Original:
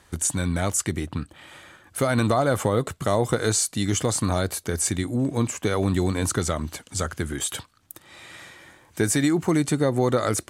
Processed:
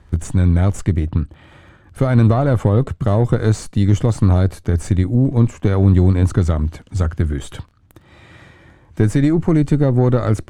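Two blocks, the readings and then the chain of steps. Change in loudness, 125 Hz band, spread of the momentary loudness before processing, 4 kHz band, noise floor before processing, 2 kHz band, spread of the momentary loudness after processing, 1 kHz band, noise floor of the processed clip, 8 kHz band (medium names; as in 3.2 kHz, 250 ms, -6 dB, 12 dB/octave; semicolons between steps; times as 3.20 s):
+7.5 dB, +13.0 dB, 15 LU, no reading, -57 dBFS, -1.5 dB, 8 LU, +0.5 dB, -51 dBFS, -11.5 dB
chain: Chebyshev shaper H 6 -25 dB, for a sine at -7.5 dBFS; crackle 11 per s -33 dBFS; RIAA curve playback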